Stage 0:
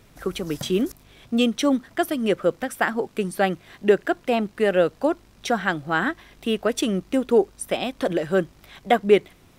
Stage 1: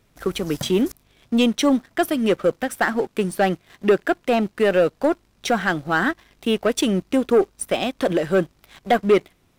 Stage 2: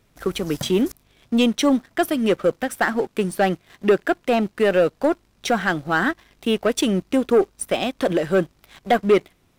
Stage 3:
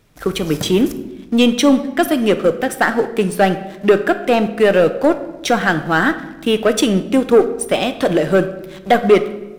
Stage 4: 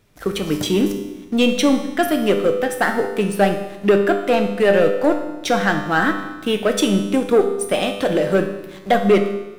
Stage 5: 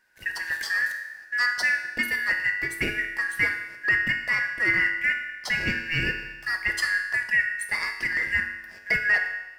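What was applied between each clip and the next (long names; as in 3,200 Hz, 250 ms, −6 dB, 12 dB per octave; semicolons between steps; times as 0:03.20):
leveller curve on the samples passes 2; level −4 dB
no processing that can be heard
rectangular room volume 530 cubic metres, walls mixed, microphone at 0.45 metres; level +5 dB
tuned comb filter 100 Hz, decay 1.1 s, harmonics all, mix 80%; level +8.5 dB
band-splitting scrambler in four parts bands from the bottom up 2143; level −8.5 dB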